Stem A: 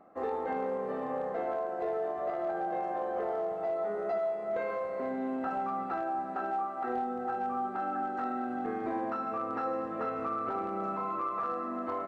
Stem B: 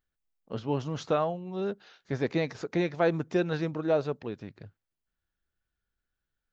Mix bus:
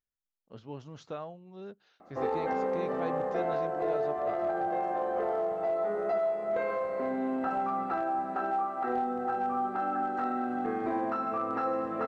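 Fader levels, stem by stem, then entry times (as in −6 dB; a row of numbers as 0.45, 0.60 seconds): +2.5, −12.5 decibels; 2.00, 0.00 seconds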